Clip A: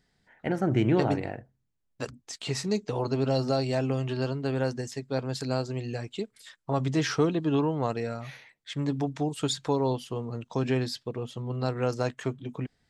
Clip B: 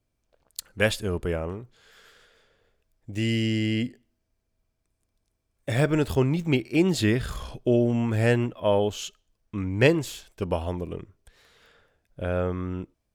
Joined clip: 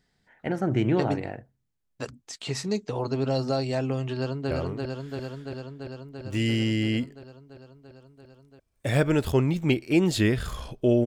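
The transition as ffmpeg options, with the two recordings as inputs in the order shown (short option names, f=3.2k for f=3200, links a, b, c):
-filter_complex "[0:a]apad=whole_dur=11.06,atrim=end=11.06,atrim=end=4.512[a];[1:a]atrim=start=1.338:end=7.89[b];[a][b]acrossfade=d=0.004:c1=hsin:c2=hsin,asplit=2[c][d];[d]afade=t=in:st=4.14:d=0.01,afade=t=out:st=4.51:d=0.01,aecho=0:1:340|680|1020|1360|1700|2040|2380|2720|3060|3400|3740|4080:0.707946|0.566357|0.453085|0.362468|0.289975|0.23198|0.185584|0.148467|0.118774|0.0950189|0.0760151|0.0608121[e];[c][e]amix=inputs=2:normalize=0"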